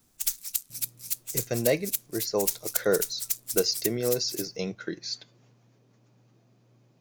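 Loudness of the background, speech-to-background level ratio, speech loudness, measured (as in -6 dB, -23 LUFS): -30.5 LUFS, 0.5 dB, -30.0 LUFS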